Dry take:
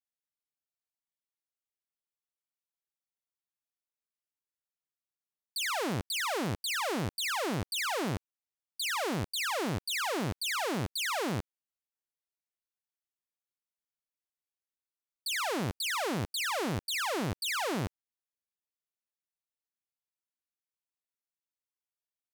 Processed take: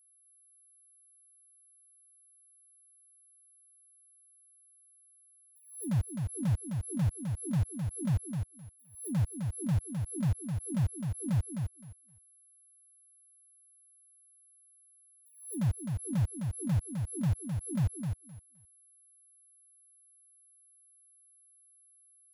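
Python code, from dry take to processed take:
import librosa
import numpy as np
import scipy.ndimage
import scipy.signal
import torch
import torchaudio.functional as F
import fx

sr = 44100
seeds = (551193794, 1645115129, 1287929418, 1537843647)

p1 = fx.bin_expand(x, sr, power=3.0)
p2 = scipy.signal.sosfilt(scipy.signal.cheby2(4, 60, [600.0, 9900.0], 'bandstop', fs=sr, output='sos'), p1)
p3 = fx.peak_eq(p2, sr, hz=790.0, db=-4.0, octaves=2.3)
p4 = p3 + 0.94 * np.pad(p3, (int(0.8 * sr / 1000.0), 0))[:len(p3)]
p5 = fx.env_lowpass_down(p4, sr, base_hz=1200.0, full_db=-34.5)
p6 = fx.quant_dither(p5, sr, seeds[0], bits=6, dither='none')
p7 = p5 + (p6 * 10.0 ** (-9.5 / 20.0))
p8 = p7 + 10.0 ** (-66.0 / 20.0) * np.sin(2.0 * np.pi * 11000.0 * np.arange(len(p7)) / sr)
p9 = p8 + fx.echo_feedback(p8, sr, ms=259, feedback_pct=17, wet_db=-5.5, dry=0)
p10 = fx.pre_swell(p9, sr, db_per_s=110.0)
y = p10 * 10.0 ** (4.0 / 20.0)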